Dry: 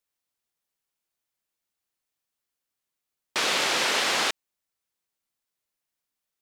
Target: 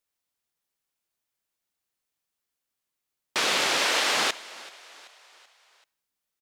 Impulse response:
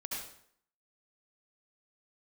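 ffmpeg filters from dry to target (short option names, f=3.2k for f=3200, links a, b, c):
-filter_complex "[0:a]asplit=2[a][b];[1:a]atrim=start_sample=2205[c];[b][c]afir=irnorm=-1:irlink=0,volume=-23.5dB[d];[a][d]amix=inputs=2:normalize=0,asettb=1/sr,asplit=3[e][f][g];[e]atrim=end=3.774[h];[f]atrim=start=3.77:end=4.17,asetpts=PTS-STARTPTS,afade=t=in:d=0.004:c=qsin,afade=t=out:st=0.396:d=0.004:c=qsin,afreqshift=55[i];[g]atrim=start=4.166[j];[h][i]acrossfade=d=0.004:c1=hsin:c2=qsin[k];[k][j]acrossfade=d=0.004:c1=qsin:c2=hsin,asplit=5[l][m][n][o][p];[m]adelay=383,afreqshift=49,volume=-20dB[q];[n]adelay=766,afreqshift=98,volume=-25.8dB[r];[o]adelay=1149,afreqshift=147,volume=-31.7dB[s];[p]adelay=1532,afreqshift=196,volume=-37.5dB[t];[l][q][r][s][t]amix=inputs=5:normalize=0"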